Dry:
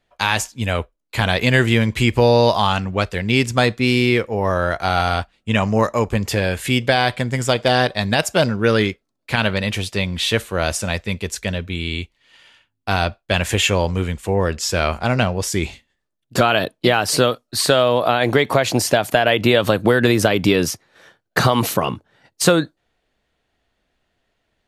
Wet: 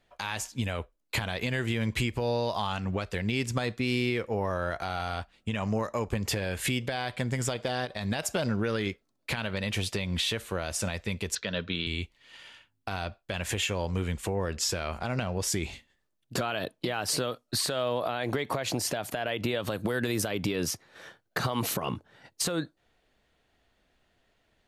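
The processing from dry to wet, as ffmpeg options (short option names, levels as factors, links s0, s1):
-filter_complex "[0:a]asettb=1/sr,asplit=3[s0][s1][s2];[s0]atrim=end=7.854[s3];[s1]atrim=start=7.85:end=8.87,asetpts=PTS-STARTPTS,afade=t=in:d=0.004:c=qsin,afade=t=out:st=1.016:d=0.004:c=qsin,acompressor=threshold=0.1:ratio=3:attack=3.2:release=140:knee=1:detection=peak[s4];[s2]atrim=start=8.866[s5];[s3][s4]acrossfade=d=0.004:c1=hsin:c2=qsin[s6];[s6][s5]acrossfade=d=0.004:c1=qsin:c2=hsin,asettb=1/sr,asplit=3[s7][s8][s9];[s7]atrim=end=11.354[s10];[s8]atrim=start=11.35:end=11.87,asetpts=PTS-STARTPTS,afade=t=in:d=0.004:c=qsin,afade=t=out:st=0.516:d=0.004:c=qsin,highpass=180,equalizer=f=240:t=q:w=4:g=-4,equalizer=f=360:t=q:w=4:g=-5,equalizer=f=770:t=q:w=4:g=-6,equalizer=f=1400:t=q:w=4:g=4,equalizer=f=2200:t=q:w=4:g=-6,equalizer=f=3800:t=q:w=4:g=4,lowpass=f=4800:w=0.5412,lowpass=f=4800:w=1.3066[s11];[s9]atrim=start=11.866[s12];[s10][s11]acrossfade=d=0.004:c1=hsin:c2=qsin[s13];[s13][s12]acrossfade=d=0.004:c1=qsin:c2=hsin,asettb=1/sr,asplit=3[s14][s15][s16];[s14]atrim=end=19.714[s17];[s15]atrim=start=19.71:end=20.31,asetpts=PTS-STARTPTS,afade=t=in:d=0.004:c=qsin,afade=t=out:st=0.596:d=0.004:c=qsin,highshelf=f=5900:g=8.5[s18];[s16]atrim=start=20.306[s19];[s17][s18]acrossfade=d=0.004:c1=hsin:c2=qsin[s20];[s20][s19]acrossfade=d=0.004:c1=qsin:c2=hsin,acompressor=threshold=0.0631:ratio=6,alimiter=limit=0.126:level=0:latency=1:release=121"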